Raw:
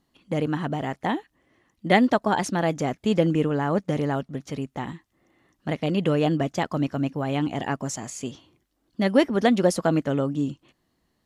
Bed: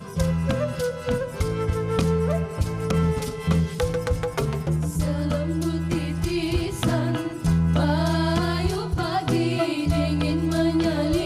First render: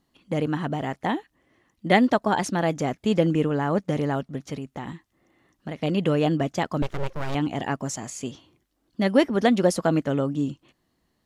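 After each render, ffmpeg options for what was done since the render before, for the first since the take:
-filter_complex "[0:a]asettb=1/sr,asplit=3[s0][s1][s2];[s0]atrim=end=4.544[s3];[s1]atrim=start=4.54:end=5.77,asetpts=PTS-STARTPTS,afade=t=in:d=0.004:c=qsin,afade=t=out:st=1.226:d=0.004:c=qsin,acompressor=threshold=0.0355:ratio=4:attack=3.2:release=140:knee=1:detection=peak[s4];[s2]atrim=start=5.766[s5];[s3][s4]acrossfade=d=0.004:c1=hsin:c2=qsin[s6];[s6][s5]acrossfade=d=0.004:c1=qsin:c2=hsin,asettb=1/sr,asplit=3[s7][s8][s9];[s7]atrim=end=6.824[s10];[s8]atrim=start=6.82:end=7.35,asetpts=PTS-STARTPTS,afade=t=in:d=0.004:c=qsin,afade=t=out:st=0.526:d=0.004:c=qsin,aeval=exprs='abs(val(0))':c=same[s11];[s9]atrim=start=7.346[s12];[s10][s11]acrossfade=d=0.004:c1=hsin:c2=qsin[s13];[s13][s12]acrossfade=d=0.004:c1=qsin:c2=hsin"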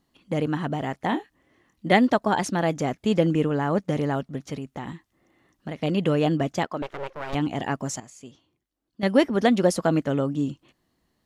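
-filter_complex "[0:a]asettb=1/sr,asplit=3[s0][s1][s2];[s0]atrim=end=1.094[s3];[s1]atrim=start=1.09:end=1.93,asetpts=PTS-STARTPTS,afade=t=in:d=0.004:c=qsin,afade=t=out:st=0.836:d=0.004:c=qsin,asplit=2[s4][s5];[s5]adelay=26,volume=0.447[s6];[s4][s6]amix=inputs=2:normalize=0,atrim=end_sample=37044[s7];[s2]atrim=start=1.926[s8];[s3][s7]acrossfade=d=0.004:c1=hsin:c2=qsin[s9];[s9][s8]acrossfade=d=0.004:c1=qsin:c2=hsin,asettb=1/sr,asplit=3[s10][s11][s12];[s10]atrim=end=6.654[s13];[s11]atrim=start=6.65:end=7.33,asetpts=PTS-STARTPTS,afade=t=in:d=0.004:c=qsin,afade=t=out:st=0.676:d=0.004:c=qsin,bass=f=250:g=-14,treble=f=4000:g=-9[s14];[s12]atrim=start=7.326[s15];[s13][s14]acrossfade=d=0.004:c1=hsin:c2=qsin[s16];[s16][s15]acrossfade=d=0.004:c1=qsin:c2=hsin,asplit=3[s17][s18][s19];[s17]atrim=end=8.002[s20];[s18]atrim=start=7.998:end=9.032,asetpts=PTS-STARTPTS,volume=0.266[s21];[s19]atrim=start=9.028[s22];[s20][s21]acrossfade=d=0.004:c1=hsin:c2=hsin[s23];[s23][s22]acrossfade=d=0.004:c1=hsin:c2=hsin"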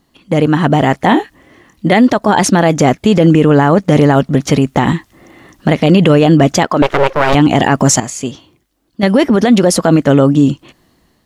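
-af "dynaudnorm=f=360:g=5:m=5.01,alimiter=level_in=4.22:limit=0.891:release=50:level=0:latency=1"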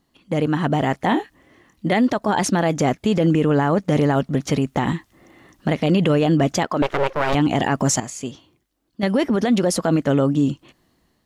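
-af "volume=0.355"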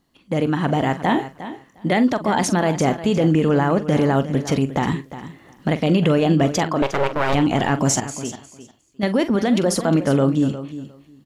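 -filter_complex "[0:a]asplit=2[s0][s1];[s1]adelay=44,volume=0.224[s2];[s0][s2]amix=inputs=2:normalize=0,aecho=1:1:356|712:0.211|0.0317"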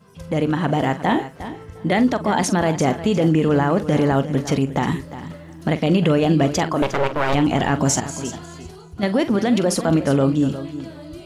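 -filter_complex "[1:a]volume=0.188[s0];[0:a][s0]amix=inputs=2:normalize=0"

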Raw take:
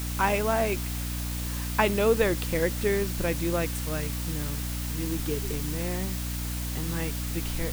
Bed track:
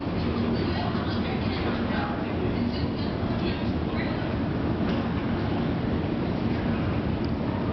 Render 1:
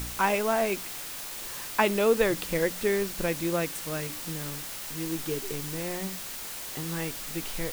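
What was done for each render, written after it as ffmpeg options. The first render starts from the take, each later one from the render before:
-af "bandreject=f=60:t=h:w=4,bandreject=f=120:t=h:w=4,bandreject=f=180:t=h:w=4,bandreject=f=240:t=h:w=4,bandreject=f=300:t=h:w=4"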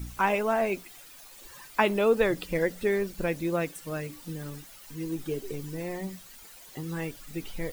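-af "afftdn=nr=14:nf=-38"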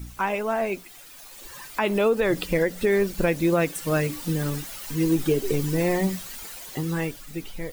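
-af "dynaudnorm=f=280:g=9:m=3.98,alimiter=limit=0.237:level=0:latency=1:release=172"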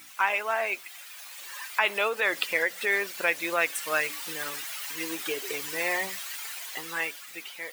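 -af "highpass=810,equalizer=f=2200:t=o:w=1.5:g=6"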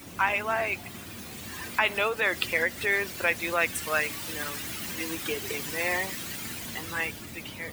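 -filter_complex "[1:a]volume=0.133[s0];[0:a][s0]amix=inputs=2:normalize=0"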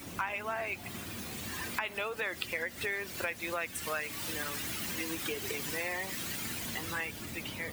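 -af "acompressor=threshold=0.0224:ratio=4"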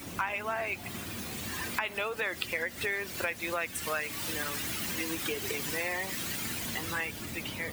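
-af "volume=1.33"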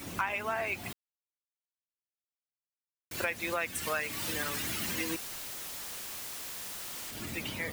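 -filter_complex "[0:a]asettb=1/sr,asplit=3[s0][s1][s2];[s0]atrim=end=5.164[s3];[s1]atrim=start=5.16:end=7.15,asetpts=PTS-STARTPTS,afade=t=in:d=0.004:c=qsin,afade=t=out:st=1.986:d=0.004:c=qsin,aeval=exprs='(mod(66.8*val(0)+1,2)-1)/66.8':c=same[s4];[s2]atrim=start=7.146[s5];[s3][s4]acrossfade=d=0.004:c1=hsin:c2=qsin[s6];[s6][s5]acrossfade=d=0.004:c1=qsin:c2=hsin,asplit=3[s7][s8][s9];[s7]atrim=end=0.93,asetpts=PTS-STARTPTS,afade=t=out:st=0.926:d=0.004:c=hsin[s10];[s8]atrim=start=0.93:end=3.11,asetpts=PTS-STARTPTS,volume=0[s11];[s9]atrim=start=3.11,asetpts=PTS-STARTPTS,afade=t=in:d=0.004:c=hsin[s12];[s10][s11][s12]concat=n=3:v=0:a=1"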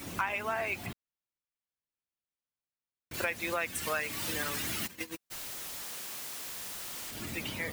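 -filter_complex "[0:a]asettb=1/sr,asplit=3[s0][s1][s2];[s0]atrim=end=0.864[s3];[s1]atrim=start=0.86:end=3.14,asetpts=PTS-STARTPTS,afade=t=in:d=0.004:c=qsin,afade=t=out:st=2.276:d=0.004:c=qsin,bass=f=250:g=5,treble=f=4000:g=-8[s4];[s2]atrim=start=3.136[s5];[s3][s4]acrossfade=d=0.004:c1=hsin:c2=qsin[s6];[s6][s5]acrossfade=d=0.004:c1=qsin:c2=hsin,asplit=3[s7][s8][s9];[s7]afade=t=out:st=4.86:d=0.02[s10];[s8]agate=range=0.00447:threshold=0.0224:ratio=16:release=100:detection=peak,afade=t=in:st=4.86:d=0.02,afade=t=out:st=5.3:d=0.02[s11];[s9]afade=t=in:st=5.3:d=0.02[s12];[s10][s11][s12]amix=inputs=3:normalize=0,asettb=1/sr,asplit=3[s13][s14][s15];[s13]atrim=end=5.834[s16];[s14]atrim=start=5.83:end=6.47,asetpts=PTS-STARTPTS,afade=t=in:d=0.004:c=qsin,afade=t=out:st=0.636:d=0.004:c=qsin,highpass=110[s17];[s15]atrim=start=6.466[s18];[s16][s17]acrossfade=d=0.004:c1=hsin:c2=qsin[s19];[s19][s18]acrossfade=d=0.004:c1=qsin:c2=hsin"

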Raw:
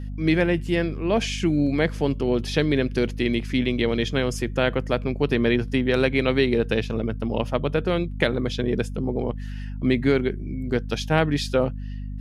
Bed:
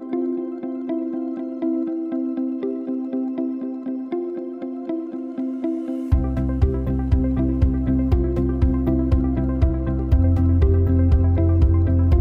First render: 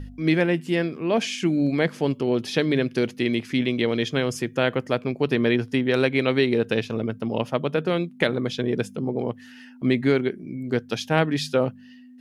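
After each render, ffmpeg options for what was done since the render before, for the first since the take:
-af "bandreject=f=50:t=h:w=4,bandreject=f=100:t=h:w=4,bandreject=f=150:t=h:w=4,bandreject=f=200:t=h:w=4"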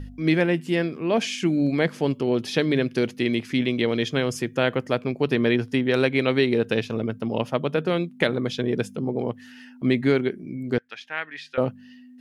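-filter_complex "[0:a]asettb=1/sr,asplit=3[s0][s1][s2];[s0]atrim=end=10.784[s3];[s1]atrim=start=10.78:end=11.58,asetpts=PTS-STARTPTS,afade=t=in:d=0.004:c=qsin,afade=t=out:st=0.796:d=0.004:c=qsin,bandpass=f=1900:t=q:w=2.3[s4];[s2]atrim=start=11.576[s5];[s3][s4]acrossfade=d=0.004:c1=hsin:c2=qsin[s6];[s6][s5]acrossfade=d=0.004:c1=qsin:c2=hsin"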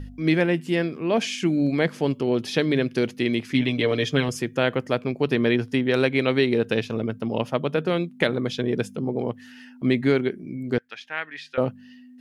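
-filter_complex "[0:a]asettb=1/sr,asplit=3[s0][s1][s2];[s0]atrim=end=3.544[s3];[s1]atrim=start=3.54:end=4.29,asetpts=PTS-STARTPTS,afade=t=in:d=0.004:c=qsin,afade=t=out:st=0.746:d=0.004:c=qsin,aecho=1:1:6.9:0.65,atrim=end_sample=33075[s4];[s2]atrim=start=4.286[s5];[s3][s4]acrossfade=d=0.004:c1=hsin:c2=qsin[s6];[s6][s5]acrossfade=d=0.004:c1=qsin:c2=hsin"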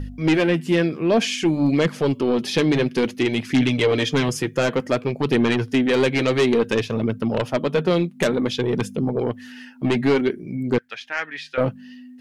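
-af "aeval=exprs='0.501*(cos(1*acos(clip(val(0)/0.501,-1,1)))-cos(1*PI/2))+0.178*(cos(5*acos(clip(val(0)/0.501,-1,1)))-cos(5*PI/2))':c=same,flanger=delay=0.1:depth=6.5:regen=-44:speed=0.56:shape=triangular"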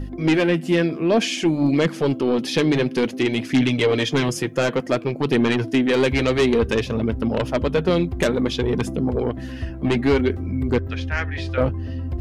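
-filter_complex "[1:a]volume=0.282[s0];[0:a][s0]amix=inputs=2:normalize=0"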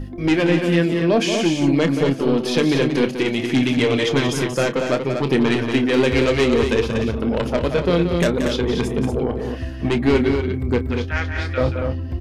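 -filter_complex "[0:a]asplit=2[s0][s1];[s1]adelay=29,volume=0.266[s2];[s0][s2]amix=inputs=2:normalize=0,aecho=1:1:179|237:0.376|0.473"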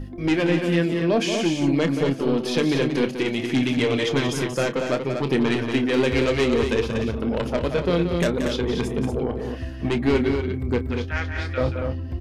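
-af "volume=0.668"

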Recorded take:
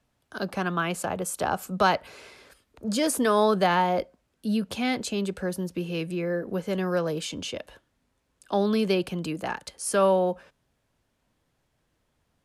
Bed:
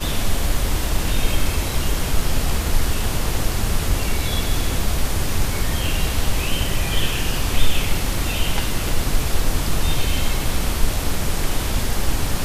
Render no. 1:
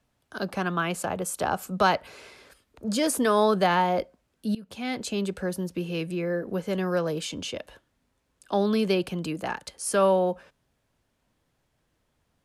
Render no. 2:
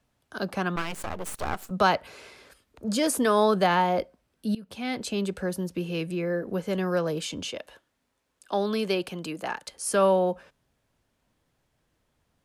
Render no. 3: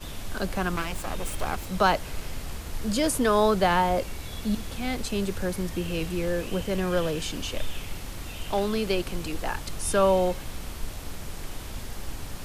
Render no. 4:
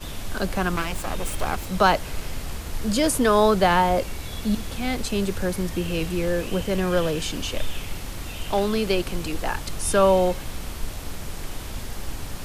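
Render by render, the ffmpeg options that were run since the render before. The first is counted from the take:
-filter_complex "[0:a]asplit=2[s0][s1];[s0]atrim=end=4.55,asetpts=PTS-STARTPTS,afade=t=out:st=4.546:d=0.004:c=hsin:silence=0.1[s2];[s1]atrim=start=4.55,asetpts=PTS-STARTPTS,afade=t=in:d=0.6:silence=0.1[s3];[s2][s3]concat=n=2:v=0:a=1"
-filter_complex "[0:a]asettb=1/sr,asplit=3[s0][s1][s2];[s0]atrim=end=0.764[s3];[s1]atrim=start=0.76:end=1.71,asetpts=PTS-STARTPTS,afade=t=in:d=0.004:c=qsin,afade=t=out:st=0.946:d=0.004:c=qsin,aeval=exprs='max(val(0),0)':c=same[s4];[s2]atrim=start=1.706[s5];[s3][s4]acrossfade=d=0.004:c1=hsin:c2=qsin[s6];[s6][s5]acrossfade=d=0.004:c1=qsin:c2=hsin,asettb=1/sr,asplit=3[s7][s8][s9];[s7]atrim=end=3.974[s10];[s8]atrim=start=3.97:end=5.19,asetpts=PTS-STARTPTS,afade=t=in:d=0.004:c=qsin,afade=t=out:st=1.216:d=0.004:c=qsin,bandreject=f=6900:w=12[s11];[s9]atrim=start=5.186[s12];[s10][s11]acrossfade=d=0.004:c1=hsin:c2=qsin[s13];[s13][s12]acrossfade=d=0.004:c1=qsin:c2=hsin,asettb=1/sr,asplit=3[s14][s15][s16];[s14]atrim=end=7.514[s17];[s15]atrim=start=7.51:end=9.72,asetpts=PTS-STARTPTS,afade=t=in:d=0.004:c=qsin,afade=t=out:st=2.206:d=0.004:c=qsin,lowshelf=f=210:g=-10.5[s18];[s16]atrim=start=9.716[s19];[s17][s18]acrossfade=d=0.004:c1=hsin:c2=qsin[s20];[s20][s19]acrossfade=d=0.004:c1=qsin:c2=hsin"
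-filter_complex "[1:a]volume=0.178[s0];[0:a][s0]amix=inputs=2:normalize=0"
-af "volume=1.5"

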